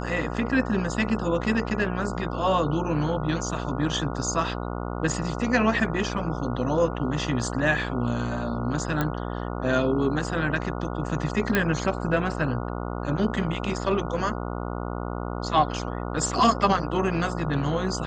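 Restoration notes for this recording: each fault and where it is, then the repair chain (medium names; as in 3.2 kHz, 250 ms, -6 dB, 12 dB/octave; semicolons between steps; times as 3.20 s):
buzz 60 Hz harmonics 24 -31 dBFS
9.01 s: pop -12 dBFS
11.55 s: pop -8 dBFS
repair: de-click; de-hum 60 Hz, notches 24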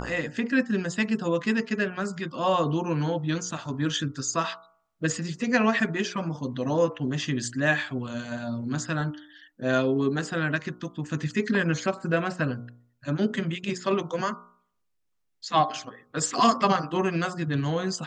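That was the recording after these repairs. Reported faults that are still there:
nothing left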